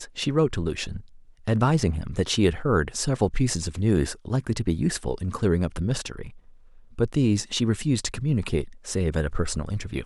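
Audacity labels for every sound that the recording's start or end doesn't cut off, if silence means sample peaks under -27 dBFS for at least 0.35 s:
1.480000	6.220000	sound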